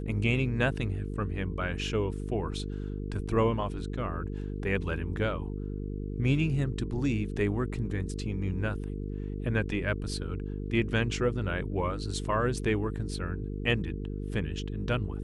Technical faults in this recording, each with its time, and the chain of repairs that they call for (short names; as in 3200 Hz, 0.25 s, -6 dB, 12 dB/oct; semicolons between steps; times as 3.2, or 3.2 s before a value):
buzz 50 Hz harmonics 9 -35 dBFS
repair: de-hum 50 Hz, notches 9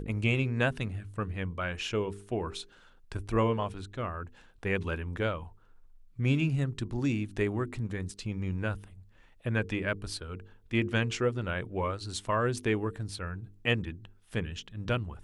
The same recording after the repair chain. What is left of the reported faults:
none